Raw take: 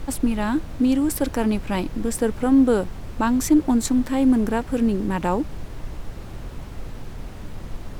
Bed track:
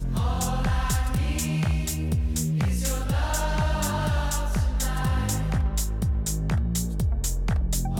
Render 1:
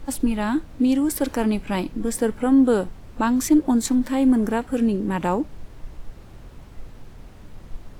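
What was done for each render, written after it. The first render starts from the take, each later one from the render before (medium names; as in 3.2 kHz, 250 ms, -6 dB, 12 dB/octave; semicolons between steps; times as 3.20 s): noise print and reduce 8 dB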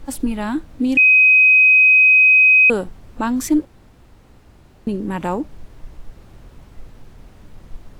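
0.97–2.70 s: bleep 2.52 kHz -7.5 dBFS; 3.65–4.87 s: room tone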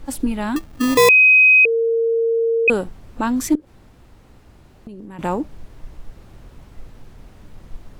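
0.56–1.09 s: sample-rate reducer 1.5 kHz; 1.65–2.68 s: bleep 458 Hz -15 dBFS; 3.55–5.19 s: compression 20:1, threshold -32 dBFS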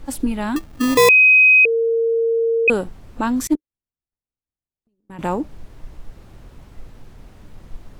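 3.47–5.10 s: upward expansion 2.5:1, over -46 dBFS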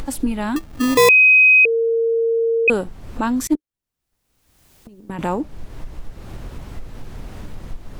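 upward compressor, threshold -21 dBFS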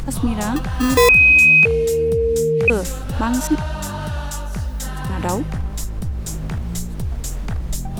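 add bed track -0.5 dB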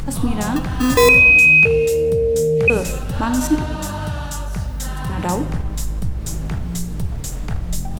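frequency-shifting echo 94 ms, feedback 57%, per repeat +67 Hz, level -23.5 dB; simulated room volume 350 m³, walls mixed, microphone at 0.41 m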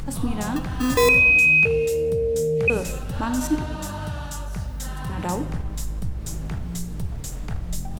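trim -5.5 dB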